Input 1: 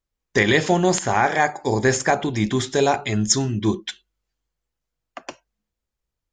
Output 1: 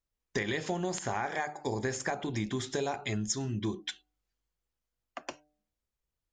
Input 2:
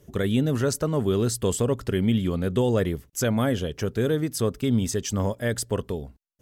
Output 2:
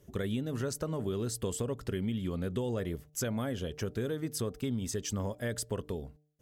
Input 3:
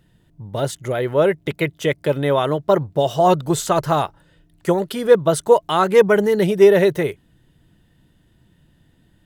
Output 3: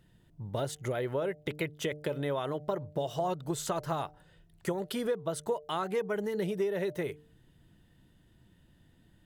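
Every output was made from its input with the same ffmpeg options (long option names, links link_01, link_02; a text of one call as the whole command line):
ffmpeg -i in.wav -af "acompressor=threshold=-24dB:ratio=6,bandreject=frequency=150:width_type=h:width=4,bandreject=frequency=300:width_type=h:width=4,bandreject=frequency=450:width_type=h:width=4,bandreject=frequency=600:width_type=h:width=4,bandreject=frequency=750:width_type=h:width=4,volume=-5.5dB" out.wav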